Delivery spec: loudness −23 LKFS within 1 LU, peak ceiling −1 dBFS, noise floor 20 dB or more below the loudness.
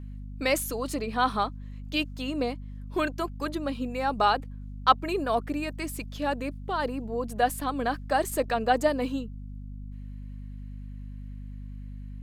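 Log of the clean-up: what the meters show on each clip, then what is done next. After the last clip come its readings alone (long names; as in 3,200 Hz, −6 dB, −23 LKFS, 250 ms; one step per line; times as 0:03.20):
mains hum 50 Hz; hum harmonics up to 250 Hz; level of the hum −36 dBFS; integrated loudness −28.5 LKFS; sample peak −5.0 dBFS; target loudness −23.0 LKFS
→ hum removal 50 Hz, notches 5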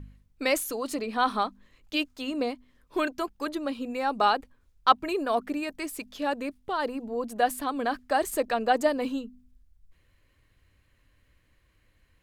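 mains hum none found; integrated loudness −29.0 LKFS; sample peak −5.0 dBFS; target loudness −23.0 LKFS
→ level +6 dB
brickwall limiter −1 dBFS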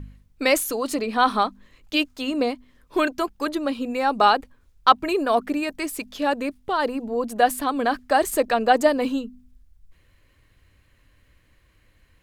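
integrated loudness −23.0 LKFS; sample peak −1.0 dBFS; background noise floor −61 dBFS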